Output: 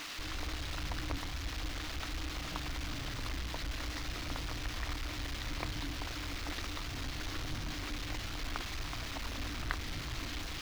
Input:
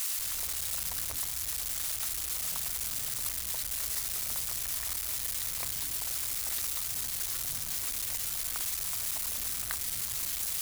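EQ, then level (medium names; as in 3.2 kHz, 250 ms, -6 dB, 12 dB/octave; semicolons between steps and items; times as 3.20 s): distance through air 240 m; bass shelf 72 Hz +9.5 dB; peaking EQ 300 Hz +14.5 dB 0.27 oct; +5.0 dB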